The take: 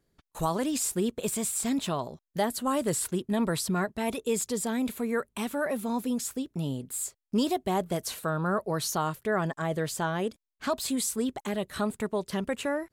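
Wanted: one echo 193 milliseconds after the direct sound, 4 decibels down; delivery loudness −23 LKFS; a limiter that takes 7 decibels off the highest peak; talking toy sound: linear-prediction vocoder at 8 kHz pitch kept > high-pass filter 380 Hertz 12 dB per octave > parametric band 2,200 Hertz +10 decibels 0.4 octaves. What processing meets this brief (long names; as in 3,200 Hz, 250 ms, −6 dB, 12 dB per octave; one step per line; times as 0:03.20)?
brickwall limiter −23 dBFS
single-tap delay 193 ms −4 dB
linear-prediction vocoder at 8 kHz pitch kept
high-pass filter 380 Hz 12 dB per octave
parametric band 2,200 Hz +10 dB 0.4 octaves
level +13.5 dB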